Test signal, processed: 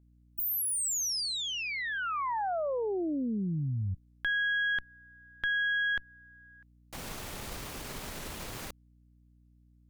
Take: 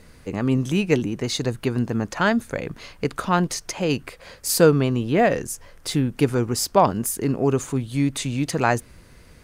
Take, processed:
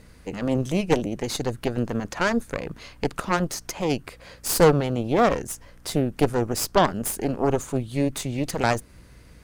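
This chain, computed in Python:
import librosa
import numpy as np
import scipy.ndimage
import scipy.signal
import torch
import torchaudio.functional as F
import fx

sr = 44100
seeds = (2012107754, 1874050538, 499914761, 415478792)

y = fx.cheby_harmonics(x, sr, harmonics=(6,), levels_db=(-12,), full_scale_db=-3.0)
y = fx.add_hum(y, sr, base_hz=60, snr_db=29)
y = fx.dynamic_eq(y, sr, hz=2600.0, q=0.75, threshold_db=-34.0, ratio=4.0, max_db=-4)
y = F.gain(torch.from_numpy(y), -2.5).numpy()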